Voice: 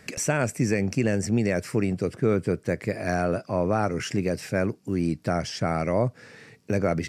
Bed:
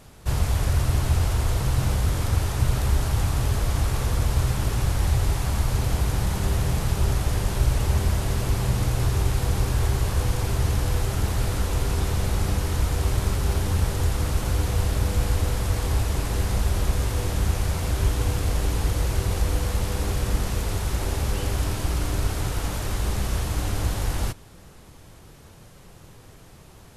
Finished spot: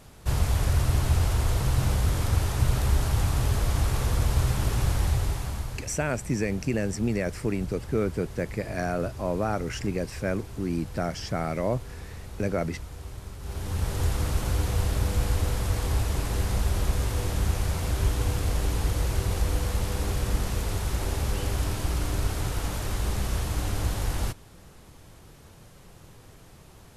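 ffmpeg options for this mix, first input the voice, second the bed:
ffmpeg -i stem1.wav -i stem2.wav -filter_complex "[0:a]adelay=5700,volume=-3.5dB[link_01];[1:a]volume=12.5dB,afade=type=out:start_time=4.92:duration=0.97:silence=0.177828,afade=type=in:start_time=13.39:duration=0.66:silence=0.199526[link_02];[link_01][link_02]amix=inputs=2:normalize=0" out.wav

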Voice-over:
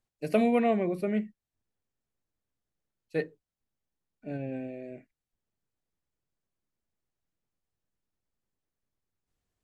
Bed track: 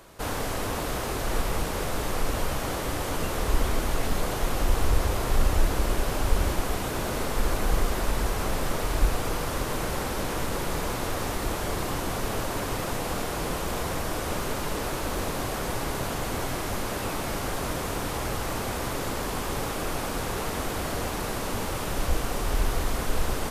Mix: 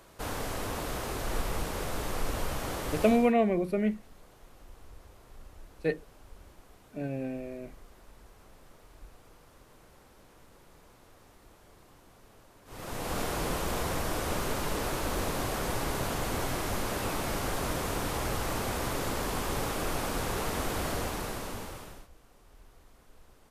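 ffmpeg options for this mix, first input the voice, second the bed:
ffmpeg -i stem1.wav -i stem2.wav -filter_complex "[0:a]adelay=2700,volume=1dB[link_01];[1:a]volume=21dB,afade=type=out:start_time=2.99:duration=0.34:silence=0.0707946,afade=type=in:start_time=12.65:duration=0.56:silence=0.0501187,afade=type=out:start_time=20.88:duration=1.2:silence=0.0354813[link_02];[link_01][link_02]amix=inputs=2:normalize=0" out.wav

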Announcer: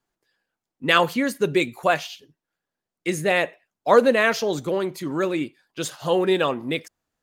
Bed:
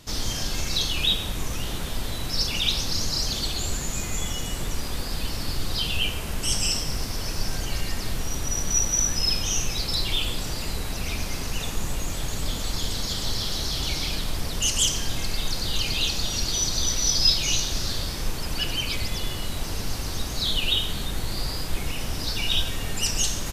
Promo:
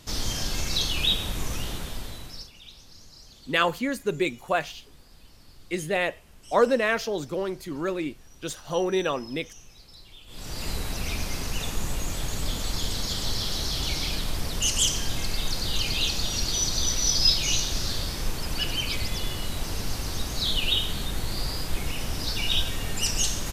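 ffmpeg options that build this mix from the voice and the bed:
ffmpeg -i stem1.wav -i stem2.wav -filter_complex "[0:a]adelay=2650,volume=-5dB[link_01];[1:a]volume=21.5dB,afade=type=out:start_time=1.54:duration=0.97:silence=0.0749894,afade=type=in:start_time=10.27:duration=0.42:silence=0.0749894[link_02];[link_01][link_02]amix=inputs=2:normalize=0" out.wav

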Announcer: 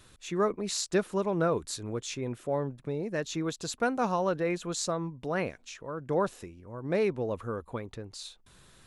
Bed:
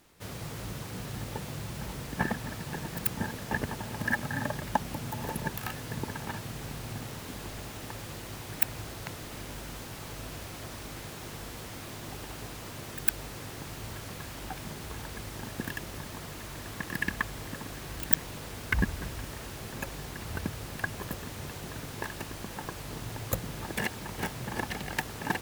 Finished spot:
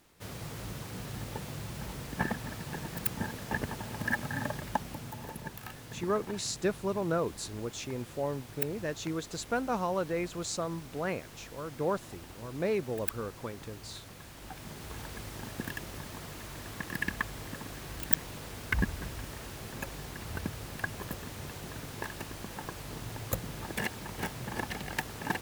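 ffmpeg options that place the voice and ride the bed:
ffmpeg -i stem1.wav -i stem2.wav -filter_complex "[0:a]adelay=5700,volume=-3dB[link_01];[1:a]volume=4dB,afade=type=out:start_time=4.47:duration=0.86:silence=0.501187,afade=type=in:start_time=14.34:duration=0.66:silence=0.501187[link_02];[link_01][link_02]amix=inputs=2:normalize=0" out.wav

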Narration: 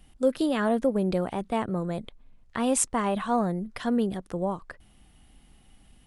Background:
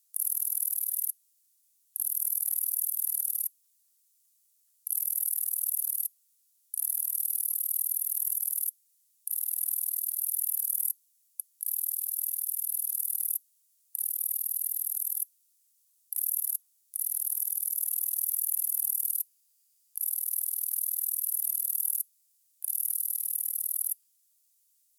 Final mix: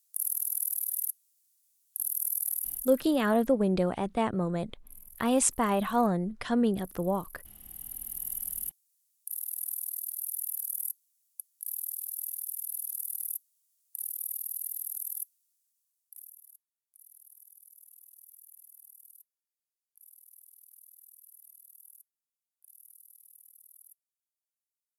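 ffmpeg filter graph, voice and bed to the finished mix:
ffmpeg -i stem1.wav -i stem2.wav -filter_complex "[0:a]adelay=2650,volume=-0.5dB[link_01];[1:a]volume=15.5dB,afade=type=out:start_time=2.47:duration=0.57:silence=0.0944061,afade=type=in:start_time=7.59:duration=0.78:silence=0.141254,afade=type=out:start_time=15.26:duration=1.1:silence=0.1[link_02];[link_01][link_02]amix=inputs=2:normalize=0" out.wav

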